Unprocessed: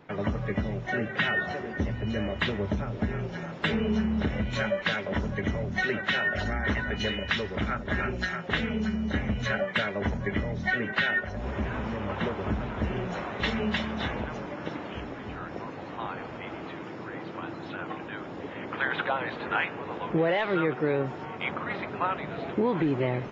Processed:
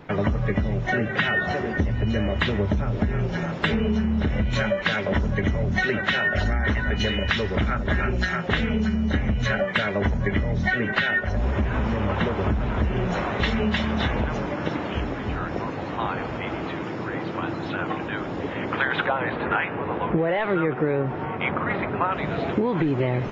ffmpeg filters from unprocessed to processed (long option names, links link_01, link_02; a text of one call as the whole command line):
ffmpeg -i in.wav -filter_complex "[0:a]asettb=1/sr,asplit=3[link_01][link_02][link_03];[link_01]atrim=end=19.064[link_04];[link_02]atrim=start=19.06:end=22.12,asetpts=PTS-STARTPTS,afade=type=in:duration=0.004:curve=qsin,afade=type=out:start_time=3.056:duration=0.004:curve=qsin,lowpass=2500[link_05];[link_03]atrim=start=22.116[link_06];[link_04][link_05]acrossfade=duration=0.004:curve1=hsin:curve2=qsin[link_07];[link_07][link_06]acrossfade=duration=0.004:curve1=qsin:curve2=hsin,lowshelf=frequency=76:gain=11,acompressor=threshold=-27dB:ratio=6,volume=8dB" out.wav